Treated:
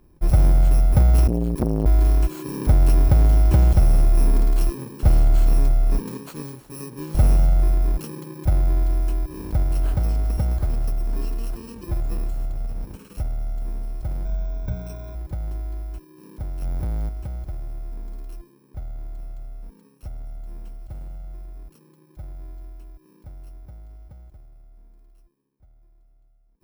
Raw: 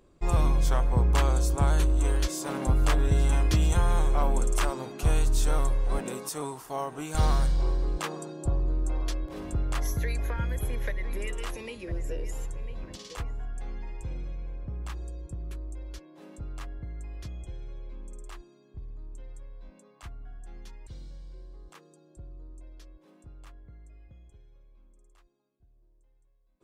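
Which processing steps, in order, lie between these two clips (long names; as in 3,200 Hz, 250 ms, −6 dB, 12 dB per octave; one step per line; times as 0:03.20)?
samples in bit-reversed order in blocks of 64 samples
0:14.25–0:15.15: EQ curve with evenly spaced ripples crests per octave 1.6, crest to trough 16 dB
0:16.62–0:17.09: leveller curve on the samples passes 3
tilt shelving filter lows +8.5 dB, about 1,300 Hz
0:01.27–0:01.86: saturating transformer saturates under 430 Hz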